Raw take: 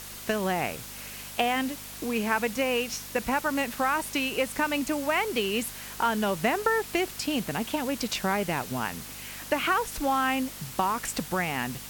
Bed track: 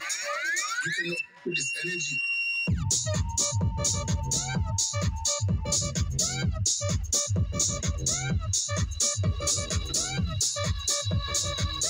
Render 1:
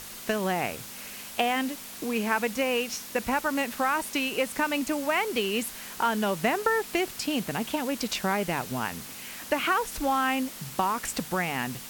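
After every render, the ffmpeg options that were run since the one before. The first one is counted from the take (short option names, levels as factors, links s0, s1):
-af "bandreject=f=50:t=h:w=4,bandreject=f=100:t=h:w=4,bandreject=f=150:t=h:w=4"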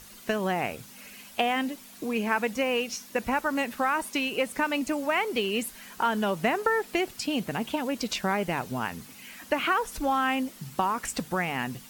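-af "afftdn=nr=9:nf=-42"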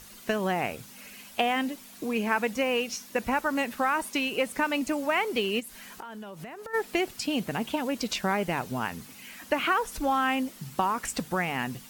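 -filter_complex "[0:a]asplit=3[s0][s1][s2];[s0]afade=t=out:st=5.59:d=0.02[s3];[s1]acompressor=threshold=0.0141:ratio=16:attack=3.2:release=140:knee=1:detection=peak,afade=t=in:st=5.59:d=0.02,afade=t=out:st=6.73:d=0.02[s4];[s2]afade=t=in:st=6.73:d=0.02[s5];[s3][s4][s5]amix=inputs=3:normalize=0"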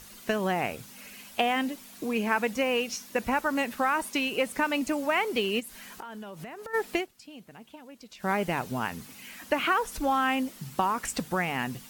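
-filter_complex "[0:a]asplit=3[s0][s1][s2];[s0]atrim=end=7.07,asetpts=PTS-STARTPTS,afade=t=out:st=6.95:d=0.12:silence=0.125893[s3];[s1]atrim=start=7.07:end=8.18,asetpts=PTS-STARTPTS,volume=0.126[s4];[s2]atrim=start=8.18,asetpts=PTS-STARTPTS,afade=t=in:d=0.12:silence=0.125893[s5];[s3][s4][s5]concat=n=3:v=0:a=1"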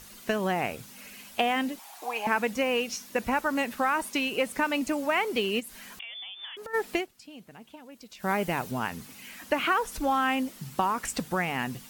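-filter_complex "[0:a]asettb=1/sr,asplit=3[s0][s1][s2];[s0]atrim=end=1.794[s3];[s1]atrim=start=1.79:end=2.27,asetpts=PTS-STARTPTS,afade=t=in:d=0.004:c=qsin,afade=t=out:st=0.476:d=0.004:c=qsin,highpass=f=810:t=q:w=8[s4];[s2]atrim=start=2.266[s5];[s3][s4]acrossfade=d=0.004:c1=hsin:c2=qsin[s6];[s6][s5]acrossfade=d=0.004:c1=qsin:c2=hsin,asettb=1/sr,asplit=3[s7][s8][s9];[s7]atrim=end=5.994[s10];[s8]atrim=start=5.99:end=6.57,asetpts=PTS-STARTPTS,afade=t=in:d=0.004:c=qsin,afade=t=out:st=0.576:d=0.004:c=qsin,lowpass=f=3100:t=q:w=0.5098,lowpass=f=3100:t=q:w=0.6013,lowpass=f=3100:t=q:w=0.9,lowpass=f=3100:t=q:w=2.563,afreqshift=-3700[s11];[s9]atrim=start=6.566[s12];[s10][s11]acrossfade=d=0.004:c1=hsin:c2=qsin[s13];[s13][s12]acrossfade=d=0.004:c1=qsin:c2=hsin,asettb=1/sr,asplit=3[s14][s15][s16];[s14]atrim=end=7.924[s17];[s15]atrim=start=7.92:end=8.71,asetpts=PTS-STARTPTS,afade=t=in:d=0.004:c=qsin,afade=t=out:st=0.786:d=0.004:c=qsin,highshelf=f=11000:g=6.5[s18];[s16]atrim=start=8.706[s19];[s17][s18]acrossfade=d=0.004:c1=hsin:c2=qsin[s20];[s20][s19]acrossfade=d=0.004:c1=qsin:c2=hsin"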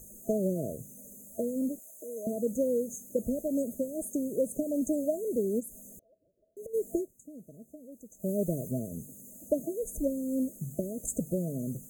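-af "afftfilt=real='re*(1-between(b*sr/4096,670,6200))':imag='im*(1-between(b*sr/4096,670,6200))':win_size=4096:overlap=0.75,adynamicequalizer=threshold=0.00251:dfrequency=150:dqfactor=3.6:tfrequency=150:tqfactor=3.6:attack=5:release=100:ratio=0.375:range=2:mode=boostabove:tftype=bell"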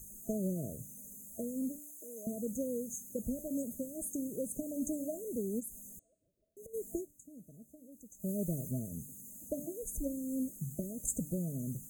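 -af "equalizer=f=560:w=0.59:g=-10.5,bandreject=f=294:t=h:w=4,bandreject=f=588:t=h:w=4,bandreject=f=882:t=h:w=4,bandreject=f=1176:t=h:w=4,bandreject=f=1470:t=h:w=4,bandreject=f=1764:t=h:w=4,bandreject=f=2058:t=h:w=4,bandreject=f=2352:t=h:w=4,bandreject=f=2646:t=h:w=4,bandreject=f=2940:t=h:w=4,bandreject=f=3234:t=h:w=4,bandreject=f=3528:t=h:w=4,bandreject=f=3822:t=h:w=4,bandreject=f=4116:t=h:w=4,bandreject=f=4410:t=h:w=4,bandreject=f=4704:t=h:w=4,bandreject=f=4998:t=h:w=4,bandreject=f=5292:t=h:w=4,bandreject=f=5586:t=h:w=4,bandreject=f=5880:t=h:w=4,bandreject=f=6174:t=h:w=4,bandreject=f=6468:t=h:w=4,bandreject=f=6762:t=h:w=4,bandreject=f=7056:t=h:w=4,bandreject=f=7350:t=h:w=4,bandreject=f=7644:t=h:w=4,bandreject=f=7938:t=h:w=4,bandreject=f=8232:t=h:w=4,bandreject=f=8526:t=h:w=4,bandreject=f=8820:t=h:w=4,bandreject=f=9114:t=h:w=4"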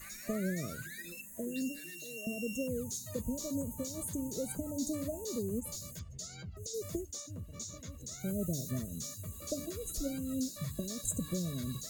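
-filter_complex "[1:a]volume=0.126[s0];[0:a][s0]amix=inputs=2:normalize=0"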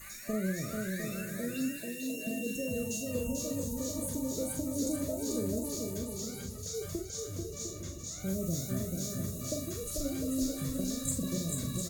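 -filter_complex "[0:a]asplit=2[s0][s1];[s1]adelay=42,volume=0.531[s2];[s0][s2]amix=inputs=2:normalize=0,asplit=2[s3][s4];[s4]aecho=0:1:440|704|862.4|957.4|1014:0.631|0.398|0.251|0.158|0.1[s5];[s3][s5]amix=inputs=2:normalize=0"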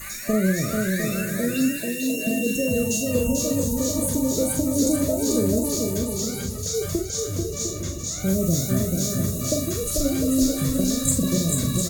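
-af "volume=3.98"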